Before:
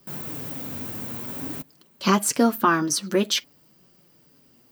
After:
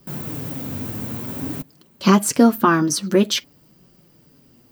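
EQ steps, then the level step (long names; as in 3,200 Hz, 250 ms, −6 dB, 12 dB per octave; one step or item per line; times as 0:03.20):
low-shelf EQ 100 Hz +5.5 dB
low-shelf EQ 490 Hz +5.5 dB
+1.5 dB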